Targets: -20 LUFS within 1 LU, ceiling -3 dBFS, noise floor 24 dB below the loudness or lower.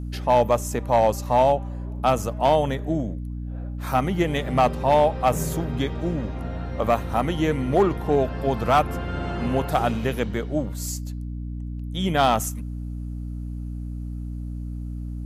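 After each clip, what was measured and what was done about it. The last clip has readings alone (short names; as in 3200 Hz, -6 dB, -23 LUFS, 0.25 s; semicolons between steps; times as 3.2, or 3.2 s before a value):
clipped 0.3%; flat tops at -10.5 dBFS; hum 60 Hz; harmonics up to 300 Hz; hum level -29 dBFS; loudness -24.0 LUFS; peak -10.5 dBFS; loudness target -20.0 LUFS
-> clip repair -10.5 dBFS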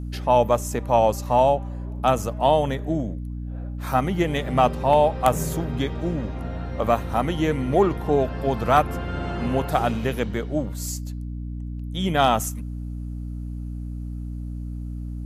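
clipped 0.0%; hum 60 Hz; harmonics up to 300 Hz; hum level -29 dBFS
-> de-hum 60 Hz, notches 5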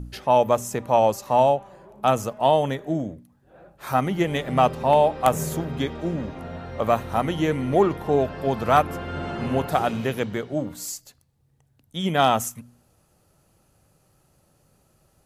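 hum none; loudness -23.0 LUFS; peak -1.5 dBFS; loudness target -20.0 LUFS
-> gain +3 dB; limiter -3 dBFS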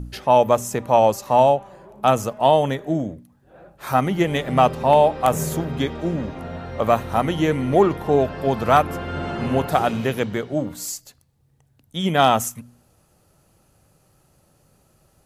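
loudness -20.0 LUFS; peak -3.0 dBFS; noise floor -61 dBFS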